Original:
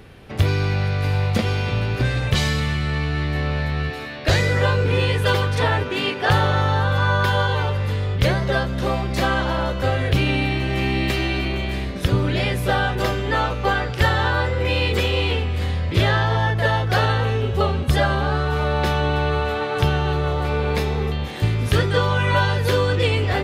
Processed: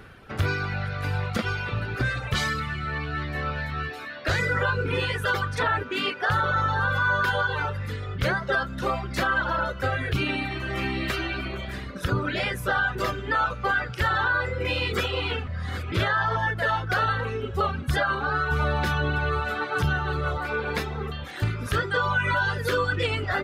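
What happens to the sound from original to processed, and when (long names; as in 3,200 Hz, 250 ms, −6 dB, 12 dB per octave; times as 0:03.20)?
0:15.47–0:15.92: reverse
0:18.51–0:20.38: bass and treble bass +5 dB, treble +3 dB
whole clip: reverb reduction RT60 1.6 s; parametric band 1,400 Hz +11.5 dB 0.59 octaves; brickwall limiter −11.5 dBFS; level −3.5 dB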